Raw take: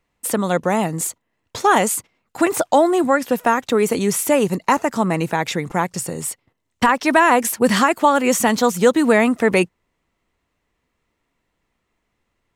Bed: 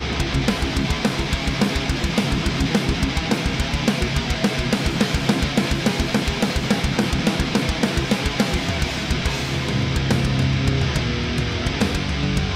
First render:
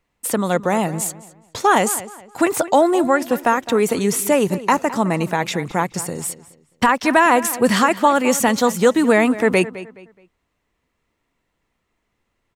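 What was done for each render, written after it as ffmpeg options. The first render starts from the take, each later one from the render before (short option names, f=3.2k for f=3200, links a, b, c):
-filter_complex "[0:a]asplit=2[a][b];[b]adelay=211,lowpass=f=4.3k:p=1,volume=-15.5dB,asplit=2[c][d];[d]adelay=211,lowpass=f=4.3k:p=1,volume=0.31,asplit=2[e][f];[f]adelay=211,lowpass=f=4.3k:p=1,volume=0.31[g];[a][c][e][g]amix=inputs=4:normalize=0"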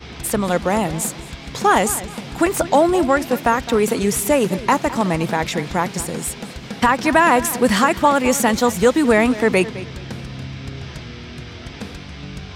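-filter_complex "[1:a]volume=-11.5dB[a];[0:a][a]amix=inputs=2:normalize=0"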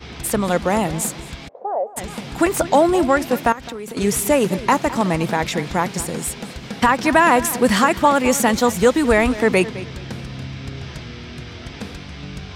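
-filter_complex "[0:a]asplit=3[a][b][c];[a]afade=t=out:st=1.47:d=0.02[d];[b]asuperpass=centerf=600:order=4:qfactor=2.6,afade=t=in:st=1.47:d=0.02,afade=t=out:st=1.96:d=0.02[e];[c]afade=t=in:st=1.96:d=0.02[f];[d][e][f]amix=inputs=3:normalize=0,asettb=1/sr,asplit=3[g][h][i];[g]atrim=end=3.524[j];[h]atrim=start=3.52:end=3.97,asetpts=PTS-STARTPTS,afade=t=in:d=0.004:c=qsin,afade=t=out:st=0.446:d=0.004:c=qsin,acompressor=threshold=-27dB:ratio=12:attack=3.2:release=140:knee=1:detection=peak[k];[i]atrim=start=3.966[l];[j][k]acrossfade=d=0.004:c1=hsin:c2=qsin[m];[m][l]acrossfade=d=0.004:c1=qsin:c2=hsin,asplit=3[n][o][p];[n]afade=t=out:st=8.96:d=0.02[q];[o]asubboost=boost=5:cutoff=69,afade=t=in:st=8.96:d=0.02,afade=t=out:st=9.37:d=0.02[r];[p]afade=t=in:st=9.37:d=0.02[s];[q][r][s]amix=inputs=3:normalize=0"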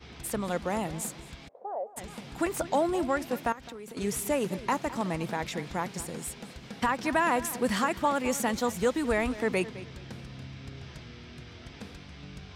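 -af "volume=-12dB"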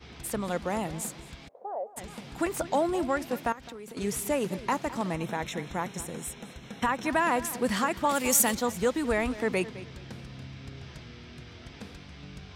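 -filter_complex "[0:a]asettb=1/sr,asplit=3[a][b][c];[a]atrim=end=5.144[d];[b]atrim=start=5.14:end=7.1,asetpts=PTS-STARTPTS,afade=t=in:d=0.004:c=qsin,afade=t=out:st=1.956:d=0.004:c=qsin,asuperstop=centerf=4700:order=8:qfactor=5.1[e];[c]atrim=start=7.096[f];[d][e]acrossfade=d=0.004:c1=hsin:c2=qsin[g];[g][f]acrossfade=d=0.004:c1=qsin:c2=hsin,asettb=1/sr,asplit=3[h][i][j];[h]atrim=end=8.094[k];[i]atrim=start=8.09:end=8.55,asetpts=PTS-STARTPTS,afade=t=in:d=0.004:c=qsin,afade=t=out:st=0.456:d=0.004:c=qsin,aemphasis=mode=production:type=75kf[l];[j]atrim=start=8.546[m];[k][l]acrossfade=d=0.004:c1=hsin:c2=qsin[n];[n][m]acrossfade=d=0.004:c1=qsin:c2=hsin"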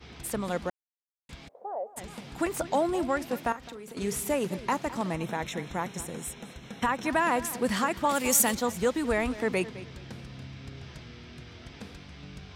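-filter_complex "[0:a]asettb=1/sr,asplit=3[a][b][c];[a]atrim=end=3.464[d];[b]atrim=start=3.46:end=4.34,asetpts=PTS-STARTPTS,afade=t=in:d=0.004:c=qsin,afade=t=out:st=0.876:d=0.004:c=qsin,asplit=2[e][f];[f]adelay=42,volume=-13.5dB[g];[e][g]amix=inputs=2:normalize=0,atrim=end_sample=38808[h];[c]atrim=start=4.336[i];[d][h]acrossfade=d=0.004:c1=hsin:c2=qsin[j];[j][i]acrossfade=d=0.004:c1=qsin:c2=hsin,asplit=3[k][l][m];[k]atrim=end=0.7,asetpts=PTS-STARTPTS,afade=t=out:st=0.696:d=0.004:c=hsin[n];[l]atrim=start=0.7:end=1.29,asetpts=PTS-STARTPTS,volume=0[o];[m]atrim=start=1.29,asetpts=PTS-STARTPTS,afade=t=in:d=0.004:c=hsin[p];[n][o][p]concat=n=3:v=0:a=1"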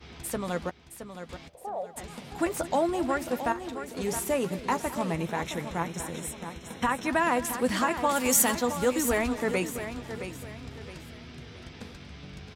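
-filter_complex "[0:a]asplit=2[a][b];[b]adelay=12,volume=-11dB[c];[a][c]amix=inputs=2:normalize=0,aecho=1:1:668|1336|2004|2672:0.316|0.108|0.0366|0.0124"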